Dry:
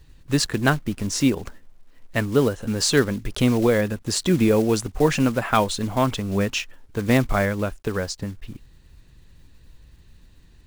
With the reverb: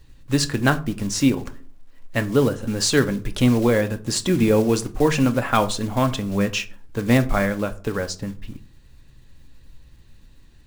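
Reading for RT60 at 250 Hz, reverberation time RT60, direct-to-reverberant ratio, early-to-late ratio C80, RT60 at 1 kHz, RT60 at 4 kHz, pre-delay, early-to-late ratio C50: 0.60 s, 0.45 s, 8.0 dB, 23.0 dB, 0.40 s, 0.25 s, 4 ms, 18.0 dB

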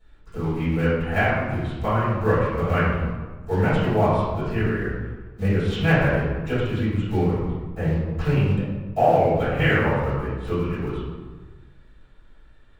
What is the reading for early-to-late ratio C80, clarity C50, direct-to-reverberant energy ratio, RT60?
1.5 dB, −1.5 dB, −15.5 dB, 1.4 s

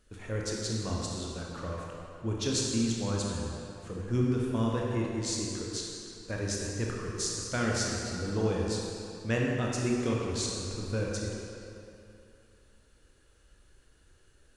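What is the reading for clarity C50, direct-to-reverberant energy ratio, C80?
−1.0 dB, −3.0 dB, 0.5 dB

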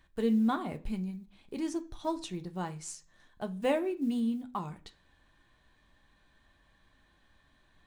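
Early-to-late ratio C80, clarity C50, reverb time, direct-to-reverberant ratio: 24.0 dB, 18.5 dB, 0.40 s, 6.0 dB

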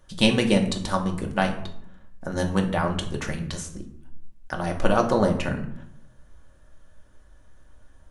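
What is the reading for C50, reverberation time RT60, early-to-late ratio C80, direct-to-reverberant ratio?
10.0 dB, 0.70 s, 13.0 dB, 2.0 dB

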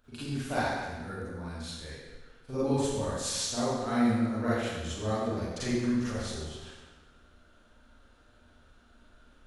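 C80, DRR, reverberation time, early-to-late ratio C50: −0.5 dB, −11.5 dB, 1.3 s, −4.5 dB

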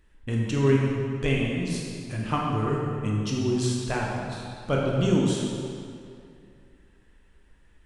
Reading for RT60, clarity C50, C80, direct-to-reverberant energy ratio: 2.4 s, −0.5 dB, 1.0 dB, −3.0 dB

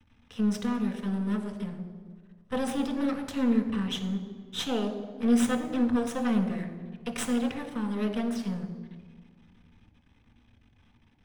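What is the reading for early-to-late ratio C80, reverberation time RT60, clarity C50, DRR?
10.5 dB, 1.6 s, 9.0 dB, 3.5 dB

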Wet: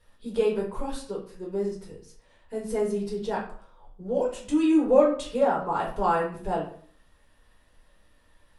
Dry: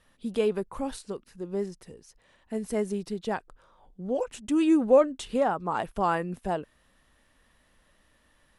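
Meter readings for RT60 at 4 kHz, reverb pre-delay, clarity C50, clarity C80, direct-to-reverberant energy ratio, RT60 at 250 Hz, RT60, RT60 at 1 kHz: 0.40 s, 4 ms, 7.0 dB, 12.0 dB, −3.5 dB, 0.60 s, 0.55 s, 0.50 s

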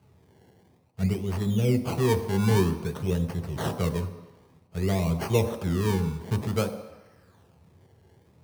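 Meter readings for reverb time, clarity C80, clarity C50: 1.1 s, 11.5 dB, 10.0 dB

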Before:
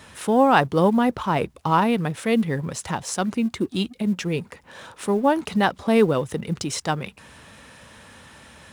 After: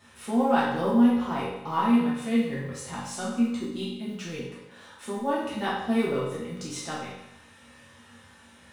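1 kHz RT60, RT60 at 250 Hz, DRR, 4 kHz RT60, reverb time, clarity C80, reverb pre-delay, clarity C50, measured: 0.90 s, 0.90 s, −8.0 dB, 0.85 s, 0.90 s, 4.0 dB, 4 ms, 1.0 dB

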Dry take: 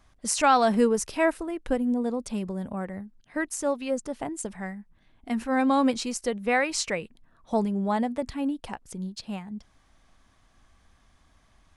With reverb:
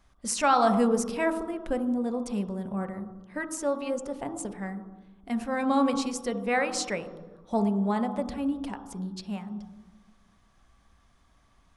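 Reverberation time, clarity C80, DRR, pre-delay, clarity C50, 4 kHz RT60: 1.2 s, 10.5 dB, 6.0 dB, 3 ms, 8.5 dB, 0.85 s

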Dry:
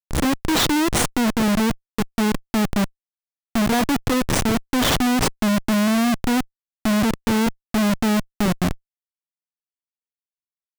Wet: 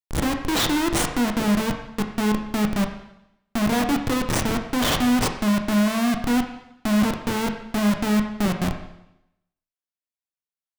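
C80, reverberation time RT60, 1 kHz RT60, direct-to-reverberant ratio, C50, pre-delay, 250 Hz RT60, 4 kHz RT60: 10.0 dB, 0.80 s, 0.80 s, 4.5 dB, 7.5 dB, 18 ms, 0.90 s, 0.85 s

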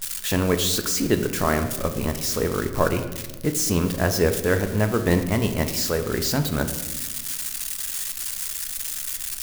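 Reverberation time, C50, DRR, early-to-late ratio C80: 1.2 s, 10.0 dB, 6.5 dB, 11.5 dB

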